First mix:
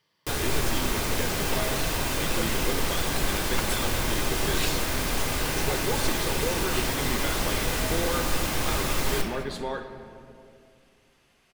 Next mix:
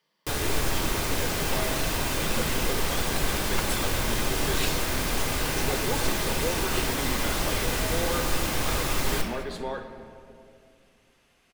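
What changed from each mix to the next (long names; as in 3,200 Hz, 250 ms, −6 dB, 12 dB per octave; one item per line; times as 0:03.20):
speech: add Chebyshev high-pass with heavy ripple 150 Hz, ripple 3 dB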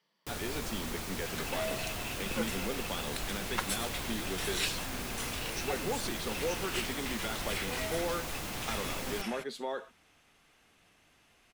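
first sound −6.5 dB
reverb: off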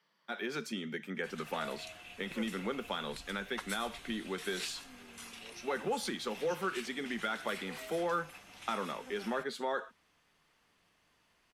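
speech: add parametric band 1,400 Hz +7 dB 1 octave
first sound: muted
second sound −8.5 dB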